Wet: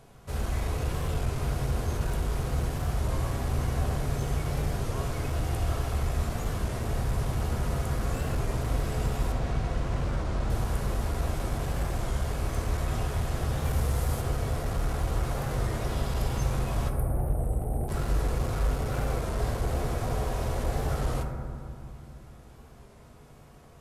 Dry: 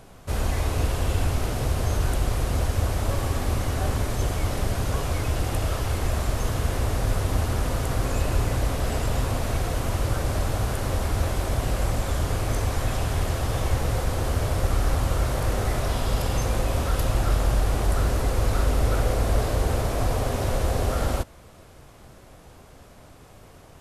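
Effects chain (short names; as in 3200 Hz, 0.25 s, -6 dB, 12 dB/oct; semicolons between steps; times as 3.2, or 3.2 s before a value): 13.64–14.2 high shelf 12000 Hz -> 7900 Hz +11.5 dB; 16.89–17.88 spectral delete 840–8200 Hz; hard clip -18.5 dBFS, distortion -16 dB; 9.32–10.5 air absorption 70 m; reverb RT60 2.4 s, pre-delay 3 ms, DRR 1.5 dB; record warp 33 1/3 rpm, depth 100 cents; gain -7.5 dB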